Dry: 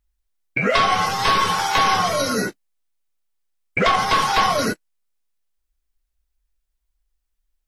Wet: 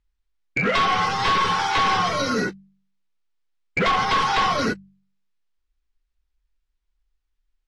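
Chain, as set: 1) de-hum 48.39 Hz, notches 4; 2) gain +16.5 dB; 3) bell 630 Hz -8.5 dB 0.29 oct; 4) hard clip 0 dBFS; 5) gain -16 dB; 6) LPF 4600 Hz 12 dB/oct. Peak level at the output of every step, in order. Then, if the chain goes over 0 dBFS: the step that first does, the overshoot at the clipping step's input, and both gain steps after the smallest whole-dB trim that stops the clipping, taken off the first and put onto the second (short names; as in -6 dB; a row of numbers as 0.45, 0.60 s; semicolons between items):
-6.5, +10.0, +10.0, 0.0, -16.0, -15.0 dBFS; step 2, 10.0 dB; step 2 +6.5 dB, step 5 -6 dB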